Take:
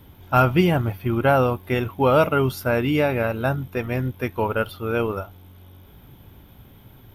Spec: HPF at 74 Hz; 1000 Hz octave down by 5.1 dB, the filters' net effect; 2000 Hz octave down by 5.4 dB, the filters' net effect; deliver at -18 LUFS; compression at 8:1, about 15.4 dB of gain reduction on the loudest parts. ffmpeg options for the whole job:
-af "highpass=74,equalizer=f=1k:t=o:g=-5.5,equalizer=f=2k:t=o:g=-5.5,acompressor=threshold=-31dB:ratio=8,volume=17.5dB"

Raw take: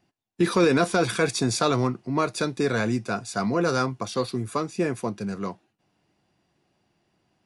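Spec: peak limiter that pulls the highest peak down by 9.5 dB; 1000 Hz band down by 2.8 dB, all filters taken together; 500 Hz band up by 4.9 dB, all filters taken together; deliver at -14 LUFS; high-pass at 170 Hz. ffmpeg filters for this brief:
-af "highpass=170,equalizer=f=500:t=o:g=7.5,equalizer=f=1k:t=o:g=-7,volume=13dB,alimiter=limit=-3.5dB:level=0:latency=1"

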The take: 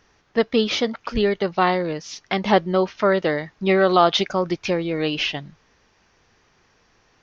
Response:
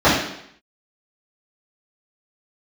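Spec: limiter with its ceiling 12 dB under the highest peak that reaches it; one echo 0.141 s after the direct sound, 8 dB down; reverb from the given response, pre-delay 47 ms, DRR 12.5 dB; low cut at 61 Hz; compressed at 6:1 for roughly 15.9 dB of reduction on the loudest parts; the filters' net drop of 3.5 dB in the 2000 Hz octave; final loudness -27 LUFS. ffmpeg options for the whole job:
-filter_complex "[0:a]highpass=61,equalizer=f=2k:t=o:g=-4.5,acompressor=threshold=-30dB:ratio=6,alimiter=level_in=2.5dB:limit=-24dB:level=0:latency=1,volume=-2.5dB,aecho=1:1:141:0.398,asplit=2[a][b];[1:a]atrim=start_sample=2205,adelay=47[c];[b][c]afir=irnorm=-1:irlink=0,volume=-38.5dB[d];[a][d]amix=inputs=2:normalize=0,volume=8.5dB"

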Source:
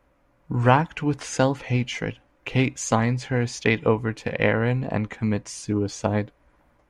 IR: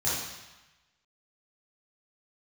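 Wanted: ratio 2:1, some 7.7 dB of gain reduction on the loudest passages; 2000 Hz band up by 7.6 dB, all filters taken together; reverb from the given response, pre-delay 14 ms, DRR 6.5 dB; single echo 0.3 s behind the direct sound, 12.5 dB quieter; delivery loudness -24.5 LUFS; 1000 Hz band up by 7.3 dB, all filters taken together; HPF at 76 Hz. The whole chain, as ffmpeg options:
-filter_complex "[0:a]highpass=76,equalizer=f=1k:t=o:g=7.5,equalizer=f=2k:t=o:g=7,acompressor=threshold=-19dB:ratio=2,aecho=1:1:300:0.237,asplit=2[a][b];[1:a]atrim=start_sample=2205,adelay=14[c];[b][c]afir=irnorm=-1:irlink=0,volume=-16dB[d];[a][d]amix=inputs=2:normalize=0,volume=-1.5dB"

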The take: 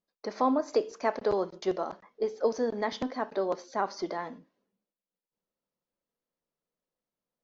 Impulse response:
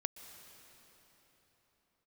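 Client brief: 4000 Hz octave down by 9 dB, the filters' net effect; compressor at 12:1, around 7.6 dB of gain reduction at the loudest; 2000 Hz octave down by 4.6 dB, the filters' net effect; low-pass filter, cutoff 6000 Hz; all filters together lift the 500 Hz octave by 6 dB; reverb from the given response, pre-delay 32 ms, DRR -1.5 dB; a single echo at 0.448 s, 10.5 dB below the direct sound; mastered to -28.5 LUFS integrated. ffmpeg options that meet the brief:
-filter_complex "[0:a]lowpass=6k,equalizer=f=500:t=o:g=7.5,equalizer=f=2k:t=o:g=-4.5,equalizer=f=4k:t=o:g=-9,acompressor=threshold=-22dB:ratio=12,aecho=1:1:448:0.299,asplit=2[a][b];[1:a]atrim=start_sample=2205,adelay=32[c];[b][c]afir=irnorm=-1:irlink=0,volume=2.5dB[d];[a][d]amix=inputs=2:normalize=0,volume=-2.5dB"

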